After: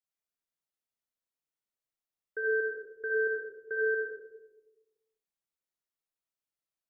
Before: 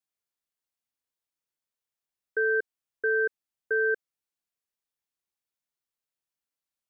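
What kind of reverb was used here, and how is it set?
algorithmic reverb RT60 1.1 s, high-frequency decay 0.25×, pre-delay 20 ms, DRR -2.5 dB; trim -8.5 dB

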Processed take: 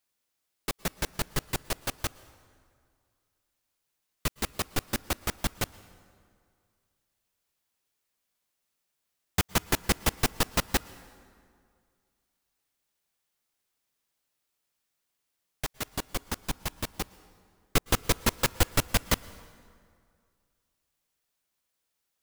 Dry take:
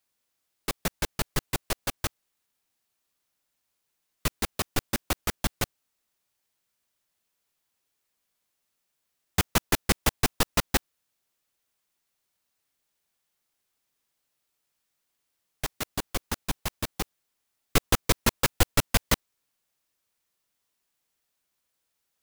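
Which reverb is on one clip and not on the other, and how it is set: plate-style reverb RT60 2.2 s, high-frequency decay 0.65×, pre-delay 100 ms, DRR 19 dB; trim -2 dB

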